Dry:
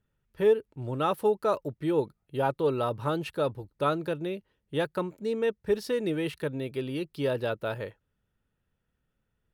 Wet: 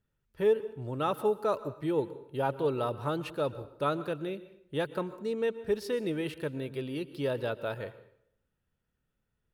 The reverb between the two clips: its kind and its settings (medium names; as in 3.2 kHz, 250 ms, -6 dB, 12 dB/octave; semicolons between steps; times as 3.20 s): plate-style reverb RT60 0.7 s, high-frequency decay 0.8×, pre-delay 105 ms, DRR 15 dB; trim -3 dB